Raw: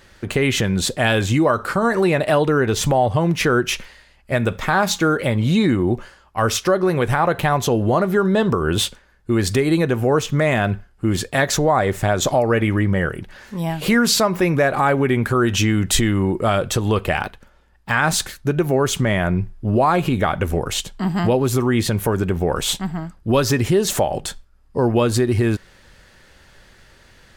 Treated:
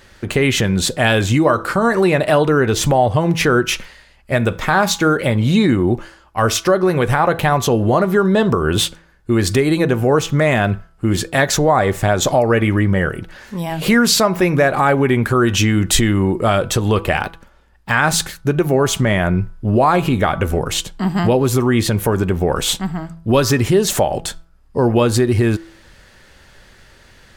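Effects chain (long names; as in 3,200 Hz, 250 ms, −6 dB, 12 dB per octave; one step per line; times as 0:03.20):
hum removal 165 Hz, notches 9
level +3 dB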